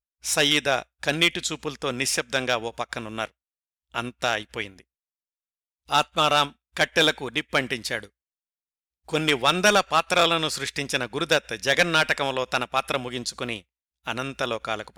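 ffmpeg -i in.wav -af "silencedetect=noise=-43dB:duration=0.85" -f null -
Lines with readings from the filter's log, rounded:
silence_start: 4.81
silence_end: 5.88 | silence_duration: 1.07
silence_start: 8.07
silence_end: 9.08 | silence_duration: 1.01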